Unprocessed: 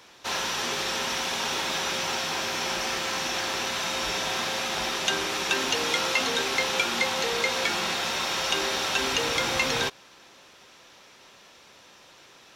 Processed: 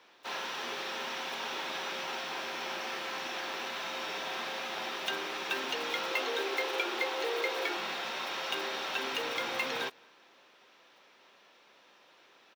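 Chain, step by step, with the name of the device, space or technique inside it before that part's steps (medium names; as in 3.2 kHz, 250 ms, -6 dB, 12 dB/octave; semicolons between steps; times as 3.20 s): early digital voice recorder (band-pass 260–3800 Hz; block-companded coder 5-bit); 6.11–7.77 s: resonant low shelf 250 Hz -11 dB, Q 3; echo from a far wall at 38 m, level -28 dB; trim -7 dB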